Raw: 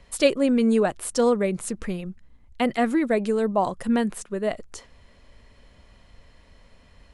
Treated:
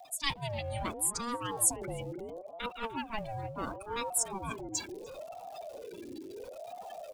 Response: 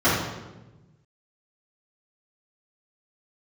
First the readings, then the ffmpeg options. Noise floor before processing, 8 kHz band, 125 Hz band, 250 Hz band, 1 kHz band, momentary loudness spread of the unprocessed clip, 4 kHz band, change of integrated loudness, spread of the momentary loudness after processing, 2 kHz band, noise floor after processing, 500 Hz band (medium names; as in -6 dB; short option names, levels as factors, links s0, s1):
-55 dBFS, +4.5 dB, -5.0 dB, -19.5 dB, -7.5 dB, 11 LU, -4.0 dB, -12.0 dB, 16 LU, -9.0 dB, -49 dBFS, -16.0 dB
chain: -filter_complex "[0:a]aeval=exprs='val(0)+0.5*0.0473*sgn(val(0))':c=same,agate=range=0.355:threshold=0.126:ratio=16:detection=peak,afftdn=nr=29:nf=-37,areverse,acompressor=threshold=0.0251:ratio=10,areverse,aexciter=amount=8.9:drive=0.9:freq=2200,asplit=2[s0][s1];[s1]adelay=298,lowpass=f=880:p=1,volume=0.355,asplit=2[s2][s3];[s3]adelay=298,lowpass=f=880:p=1,volume=0.33,asplit=2[s4][s5];[s5]adelay=298,lowpass=f=880:p=1,volume=0.33,asplit=2[s6][s7];[s7]adelay=298,lowpass=f=880:p=1,volume=0.33[s8];[s0][s2][s4][s6][s8]amix=inputs=5:normalize=0,aeval=exprs='val(0)*sin(2*PI*520*n/s+520*0.4/0.73*sin(2*PI*0.73*n/s))':c=same"